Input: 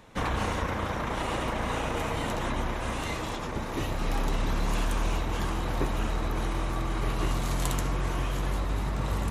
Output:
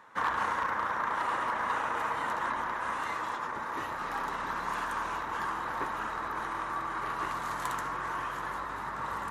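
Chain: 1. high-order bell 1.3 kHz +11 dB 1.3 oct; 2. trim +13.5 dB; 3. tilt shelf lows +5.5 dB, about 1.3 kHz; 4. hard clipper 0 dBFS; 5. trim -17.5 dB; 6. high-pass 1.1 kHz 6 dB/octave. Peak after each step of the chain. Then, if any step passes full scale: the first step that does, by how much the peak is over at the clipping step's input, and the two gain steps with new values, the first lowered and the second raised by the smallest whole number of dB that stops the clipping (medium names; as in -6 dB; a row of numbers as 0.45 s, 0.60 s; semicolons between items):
-8.5 dBFS, +5.0 dBFS, +5.0 dBFS, 0.0 dBFS, -17.5 dBFS, -17.5 dBFS; step 2, 5.0 dB; step 2 +8.5 dB, step 5 -12.5 dB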